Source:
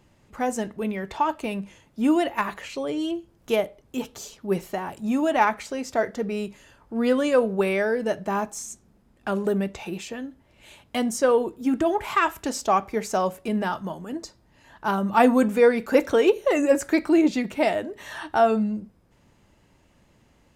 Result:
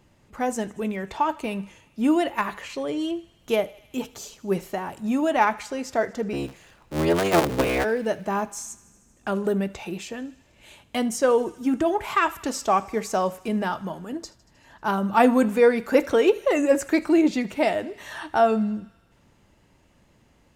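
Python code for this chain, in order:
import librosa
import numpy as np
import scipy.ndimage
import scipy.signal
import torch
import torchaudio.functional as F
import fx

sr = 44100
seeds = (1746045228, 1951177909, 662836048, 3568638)

p1 = fx.cycle_switch(x, sr, every=3, mode='inverted', at=(6.32, 7.83), fade=0.02)
y = p1 + fx.echo_thinned(p1, sr, ms=78, feedback_pct=78, hz=770.0, wet_db=-21, dry=0)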